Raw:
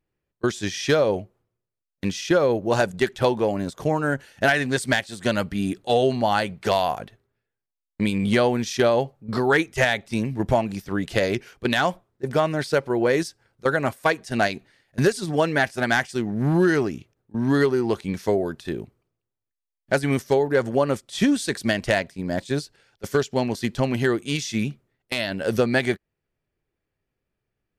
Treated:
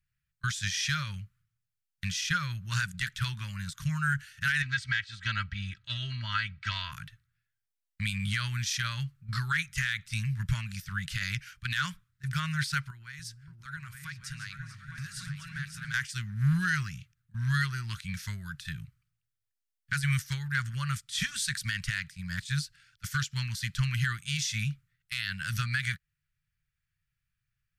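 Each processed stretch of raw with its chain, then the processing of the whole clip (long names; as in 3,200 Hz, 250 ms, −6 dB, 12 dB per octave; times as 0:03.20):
0:04.62–0:06.92: high-pass filter 45 Hz + high-frequency loss of the air 180 metres + comb filter 3.1 ms, depth 75%
0:12.90–0:15.94: downward compressor 4 to 1, threshold −35 dBFS + echo whose low-pass opens from repeat to repeat 288 ms, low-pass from 200 Hz, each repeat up 2 octaves, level 0 dB
whole clip: elliptic band-stop filter 150–1,400 Hz, stop band 40 dB; brickwall limiter −18.5 dBFS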